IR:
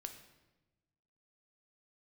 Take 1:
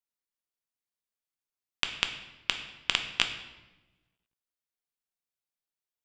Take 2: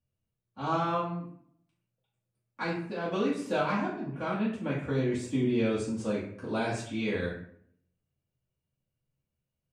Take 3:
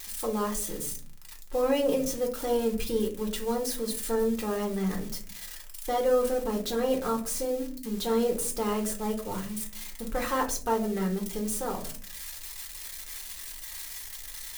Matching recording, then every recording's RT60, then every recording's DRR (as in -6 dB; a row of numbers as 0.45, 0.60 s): 1; 1.1, 0.65, 0.45 s; 5.5, -10.5, 0.5 dB